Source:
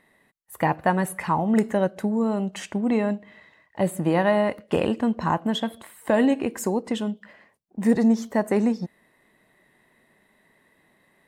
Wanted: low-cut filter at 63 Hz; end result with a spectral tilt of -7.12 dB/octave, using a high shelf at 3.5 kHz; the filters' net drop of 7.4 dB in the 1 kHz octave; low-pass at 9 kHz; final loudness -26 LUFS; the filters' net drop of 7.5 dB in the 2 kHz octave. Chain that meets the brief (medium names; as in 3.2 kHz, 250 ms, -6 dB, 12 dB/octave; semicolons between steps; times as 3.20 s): high-pass 63 Hz; low-pass 9 kHz; peaking EQ 1 kHz -8.5 dB; peaking EQ 2 kHz -4.5 dB; treble shelf 3.5 kHz -6.5 dB; trim -0.5 dB